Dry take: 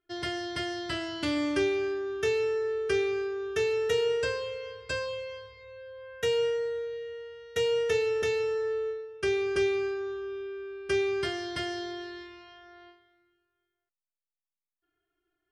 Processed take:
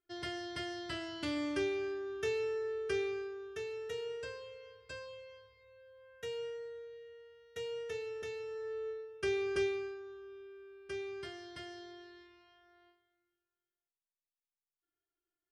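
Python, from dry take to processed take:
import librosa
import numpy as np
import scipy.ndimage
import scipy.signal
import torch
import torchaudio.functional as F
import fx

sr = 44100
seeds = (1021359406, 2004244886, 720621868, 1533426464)

y = fx.gain(x, sr, db=fx.line((3.06, -7.5), (3.63, -14.0), (8.45, -14.0), (9.01, -6.0), (9.61, -6.0), (10.03, -14.0)))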